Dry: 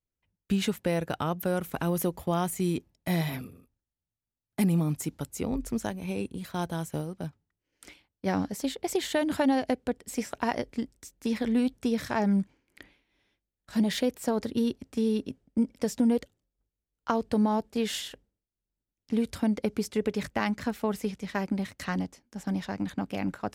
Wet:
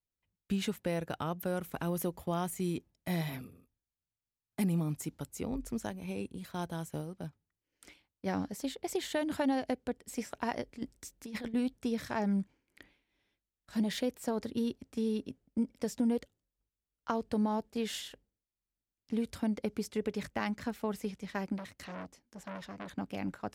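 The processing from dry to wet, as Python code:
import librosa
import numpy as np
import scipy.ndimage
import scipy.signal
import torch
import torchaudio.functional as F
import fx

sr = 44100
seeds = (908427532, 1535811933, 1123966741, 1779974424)

y = fx.over_compress(x, sr, threshold_db=-32.0, ratio=-0.5, at=(10.77, 11.54))
y = fx.transformer_sat(y, sr, knee_hz=1700.0, at=(21.58, 22.89))
y = y * librosa.db_to_amplitude(-6.0)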